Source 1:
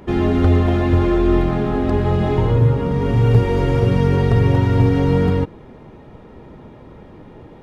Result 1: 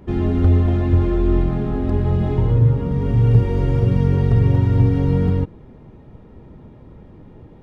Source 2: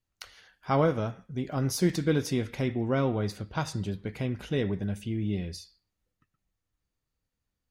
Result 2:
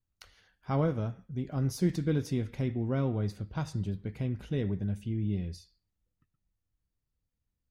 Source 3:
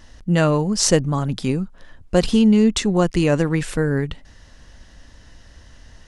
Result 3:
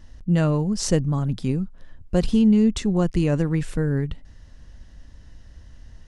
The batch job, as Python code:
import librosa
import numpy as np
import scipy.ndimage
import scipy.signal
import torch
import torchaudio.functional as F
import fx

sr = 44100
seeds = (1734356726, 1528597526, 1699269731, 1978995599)

y = fx.low_shelf(x, sr, hz=280.0, db=11.0)
y = F.gain(torch.from_numpy(y), -9.0).numpy()